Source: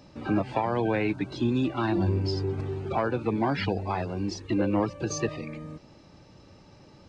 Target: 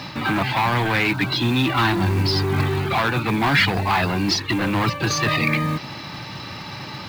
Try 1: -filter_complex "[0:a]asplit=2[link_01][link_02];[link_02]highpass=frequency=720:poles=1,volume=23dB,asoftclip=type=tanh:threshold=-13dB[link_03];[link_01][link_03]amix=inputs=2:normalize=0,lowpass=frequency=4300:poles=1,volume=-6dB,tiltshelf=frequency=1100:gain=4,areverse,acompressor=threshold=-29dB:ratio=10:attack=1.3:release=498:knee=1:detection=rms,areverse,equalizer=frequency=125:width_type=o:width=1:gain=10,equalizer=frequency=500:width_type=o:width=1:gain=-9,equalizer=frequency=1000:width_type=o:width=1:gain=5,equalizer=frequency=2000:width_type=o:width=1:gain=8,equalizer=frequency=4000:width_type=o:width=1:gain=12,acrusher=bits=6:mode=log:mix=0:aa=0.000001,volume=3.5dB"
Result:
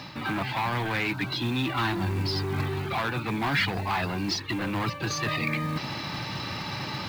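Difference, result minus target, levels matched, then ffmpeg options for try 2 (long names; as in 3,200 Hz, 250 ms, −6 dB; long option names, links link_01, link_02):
downward compressor: peak gain reduction +8 dB
-filter_complex "[0:a]asplit=2[link_01][link_02];[link_02]highpass=frequency=720:poles=1,volume=23dB,asoftclip=type=tanh:threshold=-13dB[link_03];[link_01][link_03]amix=inputs=2:normalize=0,lowpass=frequency=4300:poles=1,volume=-6dB,tiltshelf=frequency=1100:gain=4,areverse,acompressor=threshold=-20dB:ratio=10:attack=1.3:release=498:knee=1:detection=rms,areverse,equalizer=frequency=125:width_type=o:width=1:gain=10,equalizer=frequency=500:width_type=o:width=1:gain=-9,equalizer=frequency=1000:width_type=o:width=1:gain=5,equalizer=frequency=2000:width_type=o:width=1:gain=8,equalizer=frequency=4000:width_type=o:width=1:gain=12,acrusher=bits=6:mode=log:mix=0:aa=0.000001,volume=3.5dB"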